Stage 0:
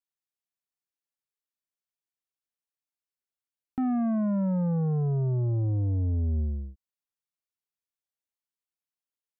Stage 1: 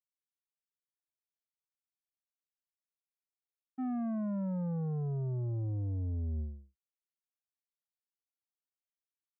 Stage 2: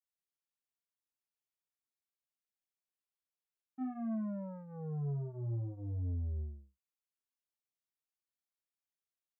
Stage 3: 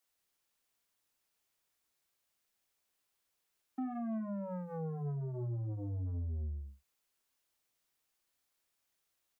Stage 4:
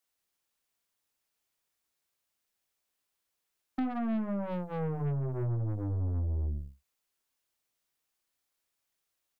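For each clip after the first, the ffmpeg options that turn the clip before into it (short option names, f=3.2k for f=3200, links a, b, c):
-af "agate=range=-33dB:threshold=-22dB:ratio=3:detection=peak,volume=-2.5dB"
-af "flanger=delay=22.5:depth=5.7:speed=0.49,volume=-1dB"
-filter_complex "[0:a]acrossover=split=180[a][b];[a]adelay=50[c];[c][b]amix=inputs=2:normalize=0,aeval=exprs='0.0299*(cos(1*acos(clip(val(0)/0.0299,-1,1)))-cos(1*PI/2))+0.00237*(cos(5*acos(clip(val(0)/0.0299,-1,1)))-cos(5*PI/2))':c=same,acompressor=threshold=-47dB:ratio=6,volume=10dB"
-af "aeval=exprs='0.0299*(cos(1*acos(clip(val(0)/0.0299,-1,1)))-cos(1*PI/2))+0.00473*(cos(3*acos(clip(val(0)/0.0299,-1,1)))-cos(3*PI/2))+0.00106*(cos(5*acos(clip(val(0)/0.0299,-1,1)))-cos(5*PI/2))+0.00211*(cos(6*acos(clip(val(0)/0.0299,-1,1)))-cos(6*PI/2))+0.0015*(cos(7*acos(clip(val(0)/0.0299,-1,1)))-cos(7*PI/2))':c=same,volume=8dB"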